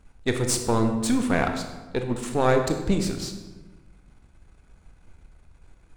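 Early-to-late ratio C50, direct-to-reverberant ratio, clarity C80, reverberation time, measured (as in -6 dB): 7.0 dB, 5.0 dB, 9.0 dB, 1.2 s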